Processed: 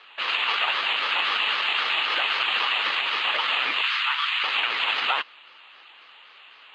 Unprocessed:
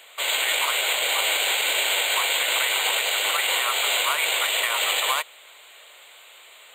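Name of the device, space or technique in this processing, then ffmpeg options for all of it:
voice changer toy: -filter_complex "[0:a]aeval=exprs='val(0)*sin(2*PI*660*n/s+660*0.65/3.8*sin(2*PI*3.8*n/s))':c=same,highpass=530,equalizer=f=880:t=q:w=4:g=4,equalizer=f=1200:t=q:w=4:g=6,equalizer=f=2800:t=q:w=4:g=7,lowpass=f=3700:w=0.5412,lowpass=f=3700:w=1.3066,asettb=1/sr,asplit=3[s0][s1][s2];[s0]atrim=end=3.824[s3];[s1]atrim=start=3.82:end=4.44,asetpts=PTS-STARTPTS,afade=t=in:d=0.004:c=qsin,afade=t=out:st=0.616:d=0.004:c=qsin,highpass=f=1100:w=0.5412,highpass=f=1100:w=1.3066[s4];[s2]atrim=start=4.436[s5];[s3][s4]acrossfade=d=0.004:c1=hsin:c2=qsin[s6];[s6][s5]acrossfade=d=0.004:c1=qsin:c2=hsin"

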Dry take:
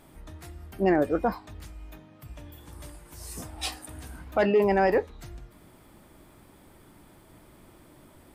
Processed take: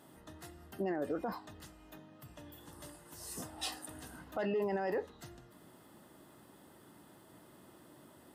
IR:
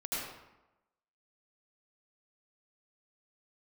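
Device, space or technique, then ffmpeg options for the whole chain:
PA system with an anti-feedback notch: -af "highpass=140,asuperstop=centerf=2300:order=4:qfactor=6.6,alimiter=limit=0.0668:level=0:latency=1:release=53,volume=0.668"

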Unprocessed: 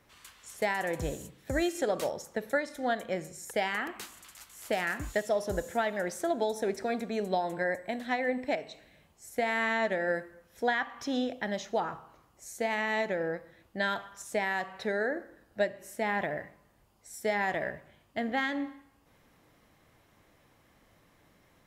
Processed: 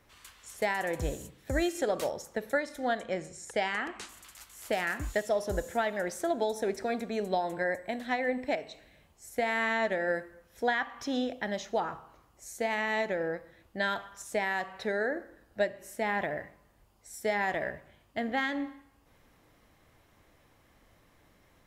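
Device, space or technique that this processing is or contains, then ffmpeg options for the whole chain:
low shelf boost with a cut just above: -filter_complex "[0:a]asettb=1/sr,asplit=3[s0][s1][s2];[s0]atrim=end=2.994[s3];[s1]atrim=start=2.99:end=4.09,asetpts=PTS-STARTPTS,afade=t=in:d=0.004:c=qsin,afade=t=out:st=1.096:d=0.004:c=qsin,lowpass=f=9200:w=0.5412,lowpass=f=9200:w=1.3066[s4];[s2]atrim=start=4.086[s5];[s3][s4]acrossfade=d=0.004:c1=hsin:c2=qsin[s6];[s6][s5]acrossfade=d=0.004:c1=qsin:c2=hsin,lowshelf=f=79:g=6.5,equalizer=f=160:t=o:w=0.98:g=-3"

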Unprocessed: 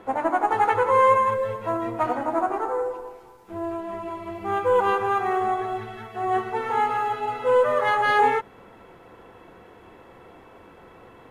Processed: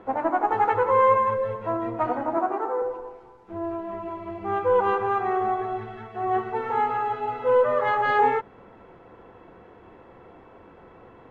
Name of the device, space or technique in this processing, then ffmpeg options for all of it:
through cloth: -filter_complex "[0:a]asettb=1/sr,asplit=3[s0][s1][s2];[s0]atrim=end=2.374[s3];[s1]atrim=start=2.37:end=2.82,asetpts=PTS-STARTPTS,afade=t=in:d=0.004:c=qsin,afade=t=out:st=0.446:d=0.004:c=qsin,highpass=f=140:w=0.5412,highpass=f=140:w=1.3066[s4];[s2]atrim=start=2.816[s5];[s3][s4]acrossfade=d=0.004:c1=hsin:c2=qsin[s6];[s6][s5]acrossfade=d=0.004:c1=qsin:c2=hsin,lowpass=7000,highshelf=f=2900:g=-12.5"

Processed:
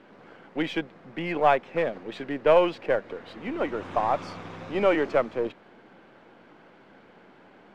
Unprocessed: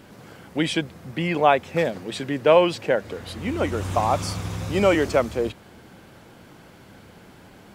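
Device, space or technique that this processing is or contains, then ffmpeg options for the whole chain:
crystal radio: -af "highpass=250,lowpass=2500,aeval=exprs='if(lt(val(0),0),0.708*val(0),val(0))':c=same,volume=0.841"

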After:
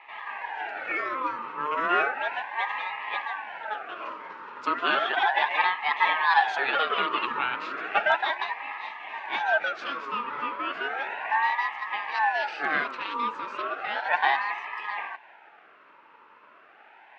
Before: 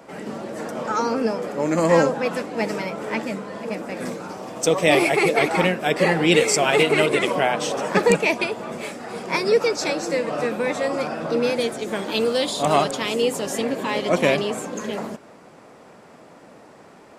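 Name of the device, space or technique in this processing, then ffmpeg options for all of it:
voice changer toy: -filter_complex "[0:a]highshelf=f=2300:g=-9.5,asettb=1/sr,asplit=3[s0][s1][s2];[s0]atrim=end=0.414[s3];[s1]atrim=start=0.41:end=0.97,asetpts=PTS-STARTPTS,afade=t=in:d=0.004:c=qsin,afade=t=out:st=0.556:d=0.004:c=qsin,aecho=1:1:2.5:0.8,atrim=end_sample=24696[s4];[s2]atrim=start=0.966[s5];[s3][s4]acrossfade=d=0.004:c1=hsin:c2=qsin[s6];[s6][s5]acrossfade=d=0.004:c1=qsin:c2=hsin,aeval=exprs='val(0)*sin(2*PI*1100*n/s+1100*0.35/0.34*sin(2*PI*0.34*n/s))':c=same,highpass=470,equalizer=f=530:t=q:w=4:g=-6,equalizer=f=850:t=q:w=4:g=8,equalizer=f=2600:t=q:w=4:g=8,lowpass=f=4100:w=0.5412,lowpass=f=4100:w=1.3066,volume=0.668"

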